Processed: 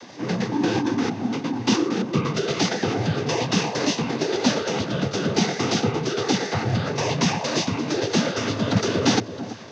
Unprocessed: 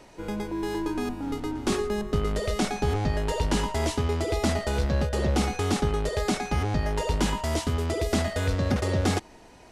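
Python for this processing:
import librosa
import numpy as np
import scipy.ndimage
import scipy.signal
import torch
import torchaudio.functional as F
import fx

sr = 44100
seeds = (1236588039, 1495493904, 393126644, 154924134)

y = fx.noise_vocoder(x, sr, seeds[0], bands=16)
y = fx.echo_alternate(y, sr, ms=334, hz=1200.0, feedback_pct=54, wet_db=-13.0)
y = fx.rider(y, sr, range_db=5, speed_s=2.0)
y = fx.formant_shift(y, sr, semitones=-4)
y = fx.high_shelf(y, sr, hz=3800.0, db=9.5)
y = y * librosa.db_to_amplitude(5.0)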